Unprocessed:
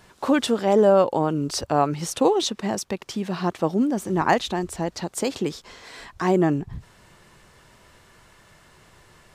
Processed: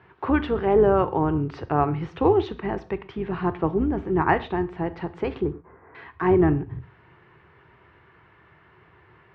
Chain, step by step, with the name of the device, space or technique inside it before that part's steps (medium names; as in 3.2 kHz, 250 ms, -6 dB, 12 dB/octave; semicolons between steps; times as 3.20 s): 5.41–5.95 s: Bessel low-pass 1 kHz, order 6; dynamic bell 130 Hz, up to +5 dB, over -41 dBFS, Q 2.7; gated-style reverb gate 160 ms falling, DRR 11.5 dB; sub-octave bass pedal (octave divider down 2 oct, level -4 dB; cabinet simulation 70–2400 Hz, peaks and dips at 220 Hz -9 dB, 390 Hz +4 dB, 580 Hz -9 dB)